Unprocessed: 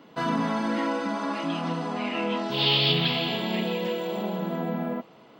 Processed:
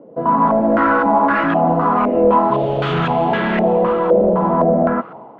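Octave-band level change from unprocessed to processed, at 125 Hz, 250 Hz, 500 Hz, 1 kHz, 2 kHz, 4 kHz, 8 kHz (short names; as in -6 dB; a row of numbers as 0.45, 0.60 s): +8.5 dB, +10.0 dB, +15.5 dB, +16.5 dB, +9.5 dB, -10.0 dB, n/a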